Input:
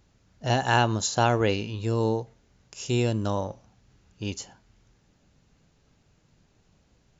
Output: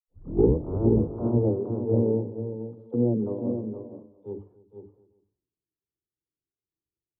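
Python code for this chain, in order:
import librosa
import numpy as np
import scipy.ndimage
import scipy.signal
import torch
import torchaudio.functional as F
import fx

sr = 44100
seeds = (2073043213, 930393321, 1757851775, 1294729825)

p1 = fx.tape_start_head(x, sr, length_s=0.87)
p2 = fx.hum_notches(p1, sr, base_hz=50, count=6)
p3 = fx.env_lowpass_down(p2, sr, base_hz=340.0, full_db=-23.5)
p4 = fx.formant_cascade(p3, sr, vowel='u')
p5 = fx.peak_eq(p4, sr, hz=110.0, db=8.5, octaves=2.2)
p6 = fx.dispersion(p5, sr, late='lows', ms=52.0, hz=390.0)
p7 = fx.formant_shift(p6, sr, semitones=6)
p8 = p7 + fx.echo_multitap(p7, sr, ms=(295, 471, 508, 719, 858), db=(-12.5, -5.0, -15.0, -15.0, -17.0), dry=0)
p9 = fx.band_widen(p8, sr, depth_pct=100)
y = F.gain(torch.from_numpy(p9), 6.0).numpy()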